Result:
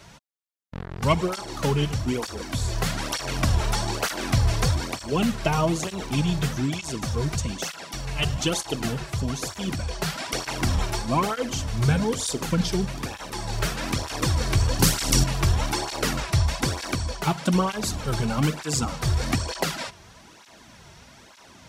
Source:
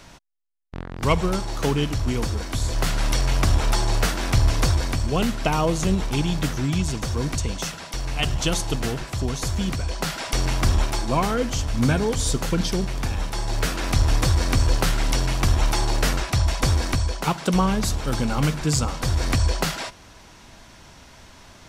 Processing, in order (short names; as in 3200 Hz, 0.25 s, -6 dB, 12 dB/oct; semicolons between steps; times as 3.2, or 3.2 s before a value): 14.79–15.24 tone controls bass +11 dB, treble +11 dB; tape flanging out of phase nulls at 1.1 Hz, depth 4.2 ms; gain +1.5 dB